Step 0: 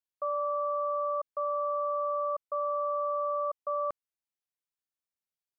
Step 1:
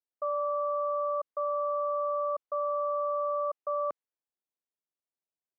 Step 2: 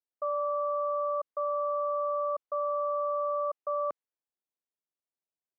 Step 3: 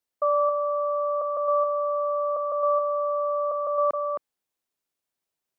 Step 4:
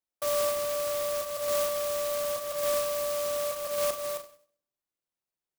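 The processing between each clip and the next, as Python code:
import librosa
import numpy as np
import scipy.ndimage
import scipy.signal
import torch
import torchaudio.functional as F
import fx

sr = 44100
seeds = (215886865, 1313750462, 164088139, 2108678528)

y1 = fx.env_lowpass(x, sr, base_hz=900.0, full_db=-27.5)
y1 = scipy.signal.sosfilt(scipy.signal.butter(2, 290.0, 'highpass', fs=sr, output='sos'), y1)
y1 = fx.tilt_eq(y1, sr, slope=-2.0)
y2 = y1
y3 = y2 + 10.0 ** (-6.0 / 20.0) * np.pad(y2, (int(266 * sr / 1000.0), 0))[:len(y2)]
y3 = F.gain(torch.from_numpy(y3), 8.5).numpy()
y4 = fx.room_shoebox(y3, sr, seeds[0], volume_m3=620.0, walls='furnished', distance_m=0.95)
y4 = fx.clock_jitter(y4, sr, seeds[1], jitter_ms=0.11)
y4 = F.gain(torch.from_numpy(y4), -7.5).numpy()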